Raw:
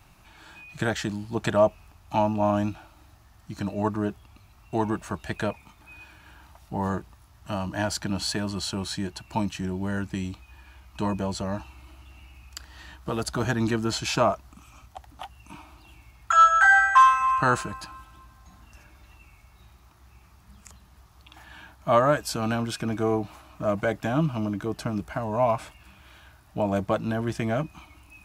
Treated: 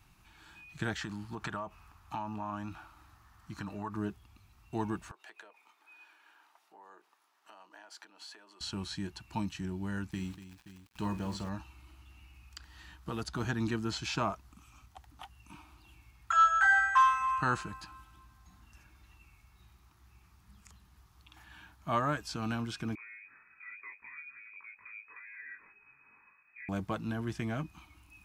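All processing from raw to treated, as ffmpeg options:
-filter_complex "[0:a]asettb=1/sr,asplit=3[s0][s1][s2];[s0]atrim=end=1.014[s3];[s1]atrim=start=1.01:end=3.95,asetpts=PTS-STARTPTS,afade=t=in:d=0.004:c=qsin,afade=t=out:st=2.936:d=0.004:c=qsin,acompressor=threshold=0.0398:ratio=8:attack=3.2:release=140:knee=1:detection=peak,equalizer=f=1200:w=1.1:g=10[s4];[s2]atrim=start=3.946[s5];[s3][s4]acrossfade=d=0.004:c1=hsin:c2=qsin[s6];[s6][s5]acrossfade=d=0.004:c1=qsin:c2=hsin,asettb=1/sr,asplit=3[s7][s8][s9];[s7]atrim=end=5.114[s10];[s8]atrim=start=5.11:end=8.61,asetpts=PTS-STARTPTS,afade=t=in:d=0.004:c=qsin,afade=t=out:st=3.496:d=0.004:c=qsin,highshelf=f=3800:g=-8,acompressor=threshold=0.0158:ratio=16:attack=3.2:release=140:knee=1:detection=peak,highpass=f=420:w=0.5412,highpass=f=420:w=1.3066[s11];[s9]atrim=start=8.606[s12];[s10][s11]acrossfade=d=0.004:c1=hsin:c2=qsin[s13];[s13][s12]acrossfade=d=0.004:c1=qsin:c2=hsin,asettb=1/sr,asplit=3[s14][s15][s16];[s14]atrim=end=10.114[s17];[s15]atrim=start=10.11:end=11.49,asetpts=PTS-STARTPTS,afade=t=in:d=0.004:c=qsin,afade=t=out:st=1.376:d=0.004:c=qsin,aeval=exprs='val(0)*gte(abs(val(0)),0.0075)':c=same,aecho=1:1:48|240|526:0.251|0.224|0.168,atrim=end_sample=60858[s18];[s16]atrim=start=11.486[s19];[s17][s18]acrossfade=d=0.004:c1=hsin:c2=qsin[s20];[s20][s19]acrossfade=d=0.004:c1=qsin:c2=hsin,asettb=1/sr,asplit=3[s21][s22][s23];[s21]atrim=end=22.954[s24];[s22]atrim=start=22.95:end=26.69,asetpts=PTS-STARTPTS,afade=t=in:d=0.004:c=qsin,afade=t=out:st=3.736:d=0.004:c=qsin,acompressor=threshold=0.00891:ratio=2.5:attack=3.2:release=140:knee=1:detection=peak,flanger=delay=19:depth=2.2:speed=1,lowpass=f=2200:t=q:w=0.5098,lowpass=f=2200:t=q:w=0.6013,lowpass=f=2200:t=q:w=0.9,lowpass=f=2200:t=q:w=2.563,afreqshift=-2600[s25];[s23]atrim=start=26.686[s26];[s24][s25]acrossfade=d=0.004:c1=hsin:c2=qsin[s27];[s27][s26]acrossfade=d=0.004:c1=qsin:c2=hsin,acrossover=split=6800[s28][s29];[s29]acompressor=threshold=0.00282:ratio=4:attack=1:release=60[s30];[s28][s30]amix=inputs=2:normalize=0,equalizer=f=590:t=o:w=0.65:g=-9.5,volume=0.447"

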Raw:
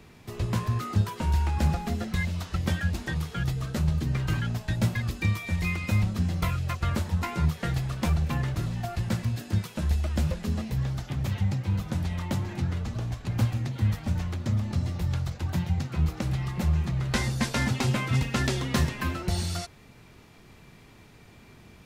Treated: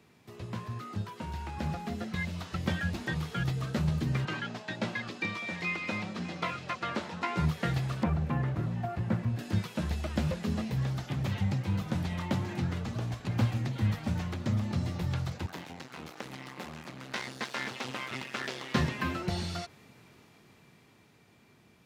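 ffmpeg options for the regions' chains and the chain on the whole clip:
-filter_complex "[0:a]asettb=1/sr,asplit=3[s0][s1][s2];[s0]atrim=end=4.254[s3];[s1]atrim=start=4.25:end=7.37,asetpts=PTS-STARTPTS,afade=t=in:d=0.004:c=qsin,afade=t=out:st=3.116:d=0.004:c=qsin,highpass=270,lowpass=5300,aecho=1:1:606:0.141,atrim=end_sample=137592[s4];[s2]atrim=start=7.366[s5];[s3][s4]acrossfade=d=0.004:c1=hsin:c2=qsin[s6];[s6][s5]acrossfade=d=0.004:c1=qsin:c2=hsin,asettb=1/sr,asplit=3[s7][s8][s9];[s7]atrim=end=8.034[s10];[s8]atrim=start=8.03:end=9.39,asetpts=PTS-STARTPTS,afade=t=in:d=0.004:c=qsin,afade=t=out:st=1.356:d=0.004:c=qsin,acrossover=split=2700[s11][s12];[s12]acompressor=threshold=0.00178:ratio=4:attack=1:release=60[s13];[s11][s13]amix=inputs=2:normalize=0,highshelf=f=2200:g=-9[s14];[s9]atrim=start=9.386[s15];[s10][s14]acrossfade=d=0.004:c1=hsin:c2=qsin[s16];[s16][s15]acrossfade=d=0.004:c1=qsin:c2=hsin,asettb=1/sr,asplit=3[s17][s18][s19];[s17]atrim=end=15.464[s20];[s18]atrim=start=15.46:end=18.75,asetpts=PTS-STARTPTS,afade=t=in:d=0.004:c=qsin,afade=t=out:st=3.286:d=0.004:c=qsin,aeval=exprs='max(val(0),0)':c=same,highpass=f=650:p=1[s21];[s19]atrim=start=18.746[s22];[s20][s21]acrossfade=d=0.004:c1=hsin:c2=qsin[s23];[s23][s22]acrossfade=d=0.004:c1=qsin:c2=hsin,acrossover=split=5000[s24][s25];[s25]acompressor=threshold=0.002:ratio=4:attack=1:release=60[s26];[s24][s26]amix=inputs=2:normalize=0,highpass=120,dynaudnorm=f=250:g=17:m=2.82,volume=0.376"

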